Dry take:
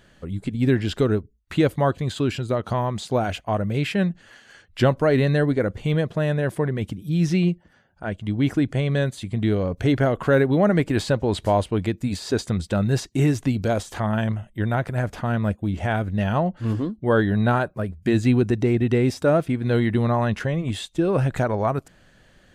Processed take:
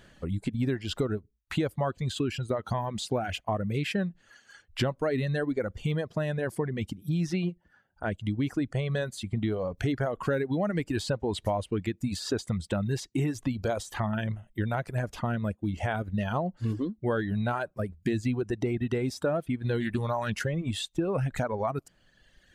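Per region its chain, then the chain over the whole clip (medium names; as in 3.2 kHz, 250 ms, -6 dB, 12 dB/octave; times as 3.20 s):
19.80–20.49 s: treble shelf 5.2 kHz +10 dB + loudspeaker Doppler distortion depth 0.15 ms
whole clip: reverb removal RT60 1.6 s; compression 4:1, threshold -26 dBFS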